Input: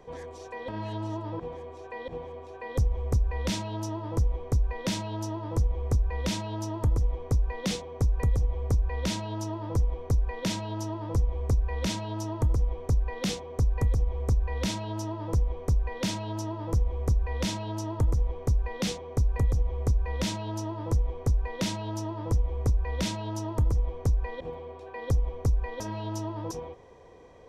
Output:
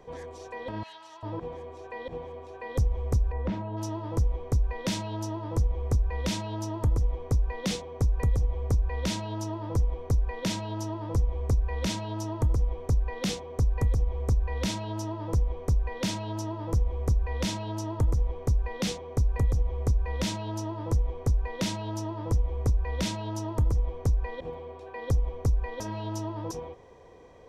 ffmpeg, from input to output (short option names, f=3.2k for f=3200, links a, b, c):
-filter_complex "[0:a]asettb=1/sr,asplit=3[a][b][c];[a]atrim=end=0.834[d];[b]atrim=start=0.83:end=1.23,asetpts=PTS-STARTPTS,afade=t=in:d=0.004:c=qsin,afade=t=out:st=0.396:d=0.004:c=qsin,highpass=1.4k[e];[c]atrim=start=1.226[f];[d][e]acrossfade=d=0.004:c1=hsin:c2=qsin[g];[g][f]acrossfade=d=0.004:c1=qsin:c2=hsin,asplit=3[h][i][j];[h]afade=t=out:st=3.31:d=0.02[k];[i]lowpass=1.3k,afade=t=in:st=3.31:d=0.02,afade=t=out:st=3.76:d=0.02[l];[j]afade=t=in:st=3.76:d=0.02[m];[k][l][m]amix=inputs=3:normalize=0"